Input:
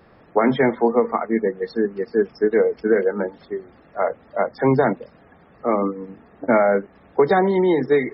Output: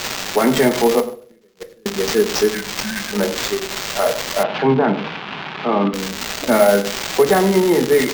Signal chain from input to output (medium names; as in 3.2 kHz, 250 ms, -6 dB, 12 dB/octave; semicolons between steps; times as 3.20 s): zero-crossing glitches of -15.5 dBFS; 1.00–1.86 s: inverted gate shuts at -15 dBFS, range -39 dB; in parallel at +2 dB: peak limiter -14 dBFS, peak gain reduction 8.5 dB; 2.51–3.13 s: on the sum: brick-wall FIR band-stop 220–1500 Hz; echo from a far wall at 17 m, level -15 dB; on a send at -7.5 dB: reverberation RT60 0.45 s, pre-delay 5 ms; on the sum: sample-and-hold 4×; 4.43–5.94 s: cabinet simulation 140–3100 Hz, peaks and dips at 160 Hz +9 dB, 550 Hz -6 dB, 850 Hz +4 dB, 1.9 kHz -4 dB; trim -3.5 dB